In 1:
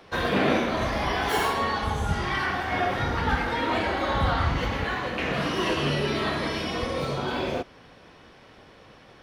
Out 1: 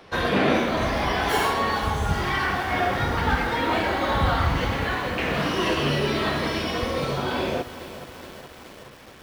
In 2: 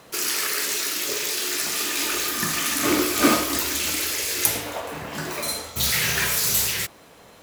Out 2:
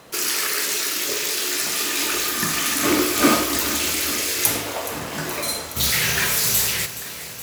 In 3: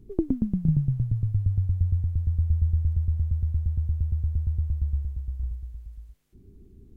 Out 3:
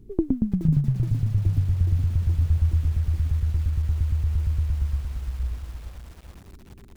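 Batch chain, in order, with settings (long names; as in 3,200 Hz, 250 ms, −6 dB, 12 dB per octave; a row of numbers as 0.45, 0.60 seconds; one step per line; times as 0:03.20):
in parallel at −5.5 dB: soft clipping −11 dBFS
on the sum: feedback echo at a low word length 421 ms, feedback 80%, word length 6 bits, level −14 dB
level −1.5 dB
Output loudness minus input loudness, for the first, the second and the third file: +2.5, +2.0, +2.0 LU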